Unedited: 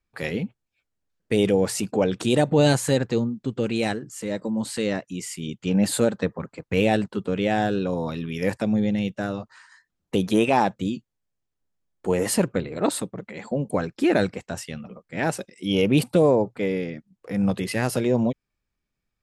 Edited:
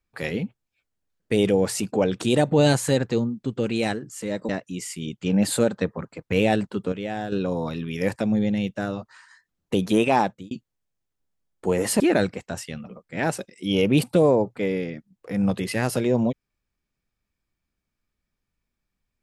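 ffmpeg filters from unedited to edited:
-filter_complex "[0:a]asplit=6[s0][s1][s2][s3][s4][s5];[s0]atrim=end=4.492[s6];[s1]atrim=start=4.898:end=7.332[s7];[s2]atrim=start=7.328:end=7.732,asetpts=PTS-STARTPTS,volume=0.422[s8];[s3]atrim=start=7.728:end=10.92,asetpts=PTS-STARTPTS,afade=t=out:st=2.882:d=0.31[s9];[s4]atrim=start=10.92:end=12.412,asetpts=PTS-STARTPTS,afade=t=in:d=0.004:c=hsin[s10];[s5]atrim=start=13.998[s11];[s6][s7]acrossfade=d=0.004:c1=hsin:c2=hsin[s12];[s12][s8]acrossfade=d=0.004:c1=hsin:c2=hsin[s13];[s9][s10]concat=n=2:v=0:a=1[s14];[s13][s14]acrossfade=d=0.004:c1=hsin:c2=hsin[s15];[s15][s11]acrossfade=d=0.004:c1=hsin:c2=hsin"

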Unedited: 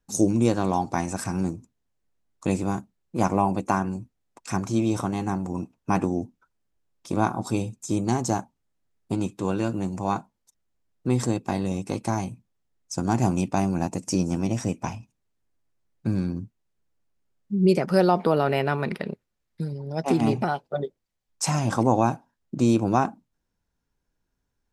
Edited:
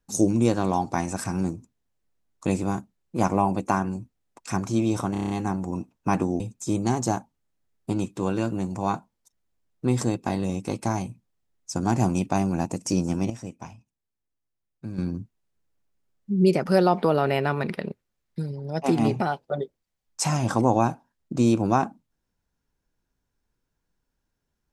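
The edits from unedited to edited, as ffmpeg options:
-filter_complex "[0:a]asplit=10[s0][s1][s2][s3][s4][s5][s6][s7][s8][s9];[s0]atrim=end=5.152[s10];[s1]atrim=start=5.118:end=5.152[s11];[s2]atrim=start=5.118:end=5.152[s12];[s3]atrim=start=5.118:end=5.152[s13];[s4]atrim=start=5.118:end=5.152[s14];[s5]atrim=start=5.118:end=5.152[s15];[s6]atrim=start=5.118:end=6.222[s16];[s7]atrim=start=7.618:end=14.522[s17];[s8]atrim=start=14.518:end=16.202,asetpts=PTS-STARTPTS,volume=0.316[s18];[s9]atrim=start=16.198[s19];[s10][s11]acrossfade=d=0.004:c1=hsin:c2=hsin[s20];[s20][s12]acrossfade=d=0.004:c1=hsin:c2=hsin[s21];[s21][s13]acrossfade=d=0.004:c1=hsin:c2=hsin[s22];[s22][s14]acrossfade=d=0.004:c1=hsin:c2=hsin[s23];[s23][s15]acrossfade=d=0.004:c1=hsin:c2=hsin[s24];[s24][s16]acrossfade=d=0.004:c1=hsin:c2=hsin[s25];[s25][s17]acrossfade=d=0.004:c1=hsin:c2=hsin[s26];[s26][s18]acrossfade=d=0.004:c1=hsin:c2=hsin[s27];[s27][s19]acrossfade=d=0.004:c1=hsin:c2=hsin"

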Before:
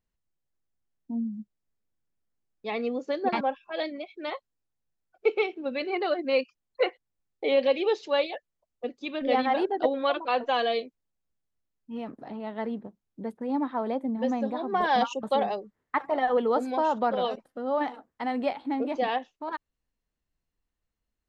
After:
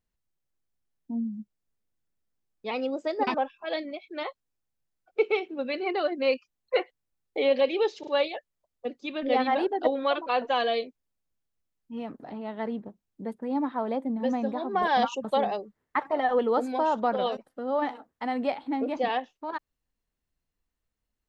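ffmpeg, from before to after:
-filter_complex "[0:a]asplit=5[s0][s1][s2][s3][s4];[s0]atrim=end=2.714[s5];[s1]atrim=start=2.71:end=3.45,asetpts=PTS-STARTPTS,asetrate=48510,aresample=44100,atrim=end_sample=29667,asetpts=PTS-STARTPTS[s6];[s2]atrim=start=3.446:end=8.102[s7];[s3]atrim=start=8.058:end=8.102[s8];[s4]atrim=start=8.058[s9];[s5][s6]acrossfade=d=0.004:c1=hsin:c2=hsin[s10];[s10][s7]acrossfade=d=0.004:c1=hsin:c2=hsin[s11];[s11][s8]acrossfade=d=0.004:c1=hsin:c2=hsin[s12];[s12][s9]acrossfade=d=0.004:c1=hsin:c2=hsin"

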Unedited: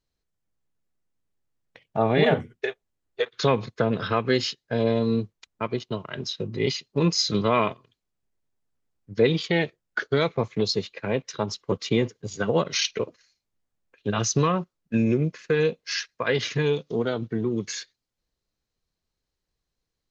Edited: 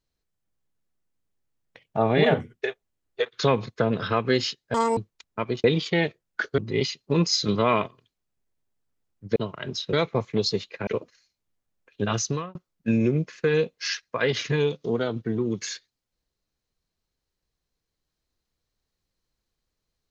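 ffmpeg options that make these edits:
-filter_complex "[0:a]asplit=9[s0][s1][s2][s3][s4][s5][s6][s7][s8];[s0]atrim=end=4.744[s9];[s1]atrim=start=4.74:end=5.2,asetpts=PTS-STARTPTS,asetrate=88200,aresample=44100[s10];[s2]atrim=start=5.196:end=5.872[s11];[s3]atrim=start=9.218:end=10.162[s12];[s4]atrim=start=6.438:end=9.222[s13];[s5]atrim=start=5.868:end=6.442[s14];[s6]atrim=start=10.158:end=11.102[s15];[s7]atrim=start=12.928:end=14.61,asetpts=PTS-STARTPTS,afade=t=out:st=1.252:d=0.43[s16];[s8]atrim=start=14.61,asetpts=PTS-STARTPTS,afade=t=in:d=0.004:c=hsin[s17];[s9][s10]acrossfade=d=0.004:c1=hsin:c2=hsin[s18];[s18][s11]acrossfade=d=0.004:c1=hsin:c2=hsin[s19];[s19][s12]acrossfade=d=0.004:c1=hsin:c2=hsin[s20];[s20][s13]acrossfade=d=0.004:c1=hsin:c2=hsin[s21];[s21][s14]acrossfade=d=0.004:c1=hsin:c2=hsin[s22];[s22][s15]acrossfade=d=0.004:c1=hsin:c2=hsin[s23];[s16][s17]concat=n=2:v=0:a=1[s24];[s23][s24]acrossfade=d=0.004:c1=hsin:c2=hsin"

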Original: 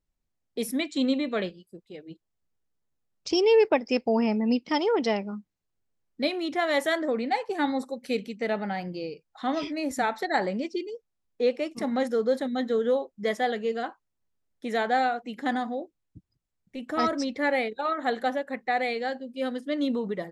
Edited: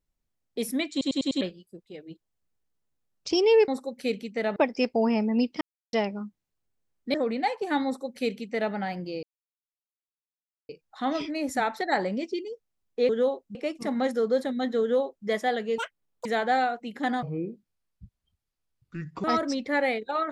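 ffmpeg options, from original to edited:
-filter_complex "[0:a]asplit=18[s0][s1][s2][s3][s4][s5][s6][s7][s8][s9][s10][s11][s12][s13][s14][s15][s16][s17];[s0]atrim=end=1.012[s18];[s1]atrim=start=0.908:end=1.012[s19];[s2]atrim=start=0.908:end=1.012[s20];[s3]atrim=start=0.908:end=1.012[s21];[s4]atrim=start=0.908:end=1.012[s22];[s5]atrim=start=1.408:end=3.682[s23];[s6]atrim=start=7.728:end=8.612[s24];[s7]atrim=start=3.678:end=4.73,asetpts=PTS-STARTPTS,afade=t=out:st=1.048:d=0.004:c=hsin[s25];[s8]atrim=start=4.73:end=5.05,asetpts=PTS-STARTPTS,volume=0[s26];[s9]atrim=start=5.05:end=6.262,asetpts=PTS-STARTPTS,afade=t=in:d=0.004:c=hsin[s27];[s10]atrim=start=7.018:end=9.11,asetpts=PTS-STARTPTS,afade=t=out:st=2.088:d=0.004:c=hsin,apad=pad_dur=1.46[s28];[s11]atrim=start=9.11:end=11.512,asetpts=PTS-STARTPTS,afade=t=in:d=0.004:c=hsin[s29];[s12]atrim=start=12.768:end=13.232[s30];[s13]atrim=start=11.508:end=13.744[s31];[s14]atrim=start=13.74:end=14.68,asetpts=PTS-STARTPTS,asetrate=87318,aresample=44100,atrim=end_sample=20936,asetpts=PTS-STARTPTS[s32];[s15]atrim=start=14.676:end=15.654[s33];[s16]atrim=start=15.65:end=16.94,asetpts=PTS-STARTPTS,asetrate=28224,aresample=44100,atrim=end_sample=88889,asetpts=PTS-STARTPTS[s34];[s17]atrim=start=16.936[s35];[s18][s19]acrossfade=d=0.004:c1=hsin:c2=hsin[s36];[s36][s20]acrossfade=d=0.004:c1=hsin:c2=hsin[s37];[s37][s21]acrossfade=d=0.004:c1=hsin:c2=hsin[s38];[s38][s22]acrossfade=d=0.004:c1=hsin:c2=hsin[s39];[s39][s23]acrossfade=d=0.004:c1=hsin:c2=hsin[s40];[s40][s24]acrossfade=d=0.004:c1=hsin:c2=hsin[s41];[s25][s26][s27]concat=n=3:v=0:a=1[s42];[s41][s42]acrossfade=d=0.004:c1=hsin:c2=hsin[s43];[s28][s29]concat=n=2:v=0:a=1[s44];[s43][s44]acrossfade=d=0.004:c1=hsin:c2=hsin[s45];[s45][s30]acrossfade=d=0.004:c1=hsin:c2=hsin[s46];[s46][s31]acrossfade=d=0.004:c1=hsin:c2=hsin[s47];[s47][s32]acrossfade=d=0.004:c1=hsin:c2=hsin[s48];[s48][s33]acrossfade=d=0.004:c1=hsin:c2=hsin[s49];[s49][s34]acrossfade=d=0.004:c1=hsin:c2=hsin[s50];[s50][s35]acrossfade=d=0.004:c1=hsin:c2=hsin"

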